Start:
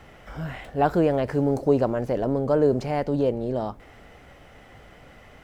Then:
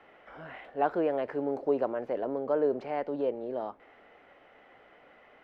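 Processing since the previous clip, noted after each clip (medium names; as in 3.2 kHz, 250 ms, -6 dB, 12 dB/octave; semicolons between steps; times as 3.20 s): three-band isolator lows -22 dB, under 270 Hz, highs -24 dB, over 3.3 kHz; trim -5.5 dB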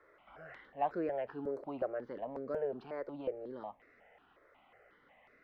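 stepped phaser 5.5 Hz 780–3100 Hz; trim -4.5 dB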